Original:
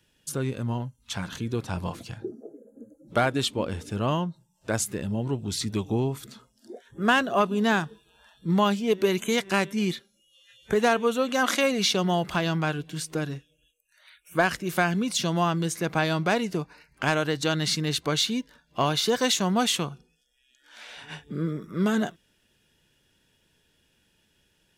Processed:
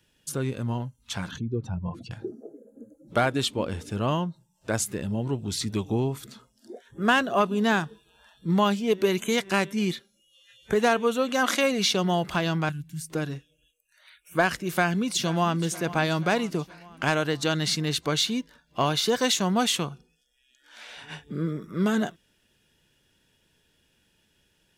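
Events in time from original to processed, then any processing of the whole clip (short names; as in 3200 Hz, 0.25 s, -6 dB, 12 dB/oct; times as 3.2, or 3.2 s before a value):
1.31–2.11 spectral contrast raised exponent 1.9
12.69–13.1 EQ curve 170 Hz 0 dB, 280 Hz -11 dB, 410 Hz -28 dB, 940 Hz -20 dB, 2100 Hz -11 dB, 3400 Hz -16 dB, 5300 Hz -8 dB, 12000 Hz +1 dB
14.67–15.6 echo throw 0.48 s, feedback 60%, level -16.5 dB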